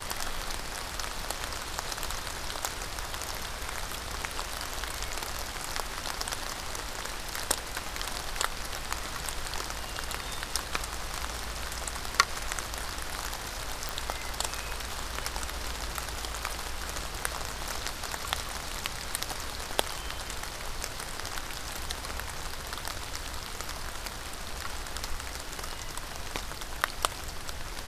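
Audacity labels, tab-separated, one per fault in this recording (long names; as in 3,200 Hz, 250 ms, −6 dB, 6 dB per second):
13.890000	13.890000	click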